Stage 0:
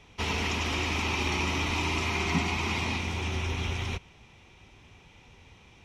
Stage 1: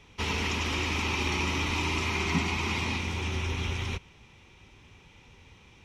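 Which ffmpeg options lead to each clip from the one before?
ffmpeg -i in.wav -af "equalizer=frequency=690:width=4.9:gain=-6.5" out.wav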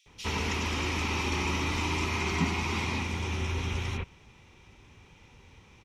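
ffmpeg -i in.wav -filter_complex "[0:a]acrossover=split=3100[link_01][link_02];[link_01]adelay=60[link_03];[link_03][link_02]amix=inputs=2:normalize=0" out.wav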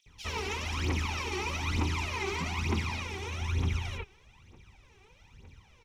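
ffmpeg -i in.wav -af "aphaser=in_gain=1:out_gain=1:delay=2.7:decay=0.73:speed=1.1:type=triangular,volume=-6.5dB" out.wav

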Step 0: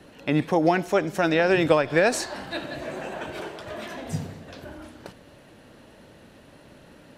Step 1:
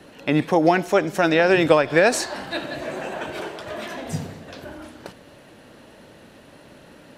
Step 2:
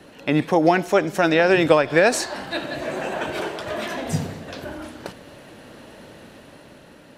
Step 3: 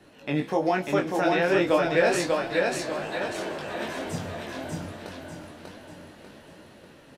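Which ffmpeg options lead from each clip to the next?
ffmpeg -i in.wav -af "lowshelf=frequency=130:gain=-6,volume=4dB" out.wav
ffmpeg -i in.wav -af "dynaudnorm=framelen=190:gausssize=9:maxgain=4dB" out.wav
ffmpeg -i in.wav -filter_complex "[0:a]flanger=delay=19.5:depth=3.6:speed=0.35,asplit=2[link_01][link_02];[link_02]aecho=0:1:593|1186|1779|2372|2965:0.708|0.297|0.125|0.0525|0.022[link_03];[link_01][link_03]amix=inputs=2:normalize=0,flanger=delay=8.3:depth=7.5:regen=62:speed=1.2:shape=triangular" out.wav

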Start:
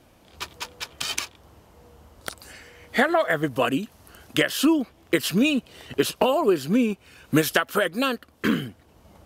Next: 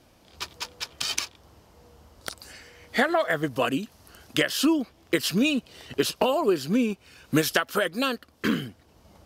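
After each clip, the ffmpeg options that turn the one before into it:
ffmpeg -i in.wav -af "equalizer=frequency=5000:width_type=o:width=0.77:gain=5.5,volume=-2.5dB" out.wav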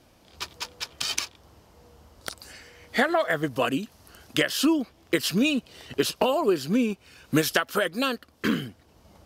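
ffmpeg -i in.wav -af anull out.wav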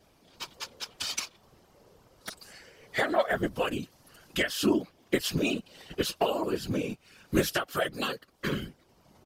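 ffmpeg -i in.wav -af "aecho=1:1:6.3:0.65,afftfilt=real='hypot(re,im)*cos(2*PI*random(0))':imag='hypot(re,im)*sin(2*PI*random(1))':win_size=512:overlap=0.75" out.wav

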